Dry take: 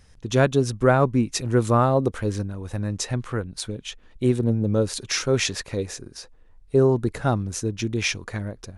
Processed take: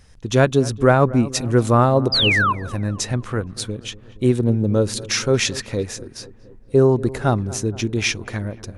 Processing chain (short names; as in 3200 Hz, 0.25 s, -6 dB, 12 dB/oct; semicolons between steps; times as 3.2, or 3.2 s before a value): painted sound fall, 2.12–2.53, 960–5100 Hz -21 dBFS; darkening echo 0.235 s, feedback 66%, low-pass 1400 Hz, level -17.5 dB; ending taper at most 410 dB/s; gain +3.5 dB